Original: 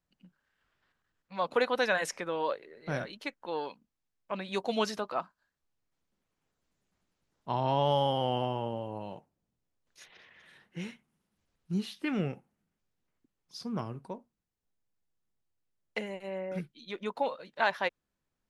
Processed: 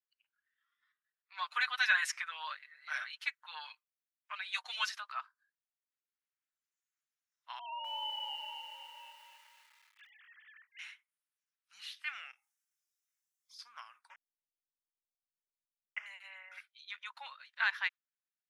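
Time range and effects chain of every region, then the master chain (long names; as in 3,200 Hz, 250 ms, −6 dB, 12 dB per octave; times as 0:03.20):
0:01.37–0:04.89: high-shelf EQ 8,000 Hz +2.5 dB + comb filter 6.6 ms, depth 95%
0:07.59–0:10.79: three sine waves on the formant tracks + feedback echo at a low word length 254 ms, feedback 55%, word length 9 bits, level −6 dB
0:12.31–0:13.59: high-shelf EQ 3,000 Hz +10.5 dB + downward compressor 4 to 1, threshold −54 dBFS + double-tracking delay 25 ms −4.5 dB
0:14.10–0:16.06: hold until the input has moved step −39 dBFS + Butterworth band-reject 4,100 Hz, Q 1.5 + high-frequency loss of the air 210 metres
whole clip: inverse Chebyshev high-pass filter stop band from 410 Hz, stop band 60 dB; noise reduction from a noise print of the clip's start 12 dB; high-shelf EQ 3,900 Hz −10 dB; level +3 dB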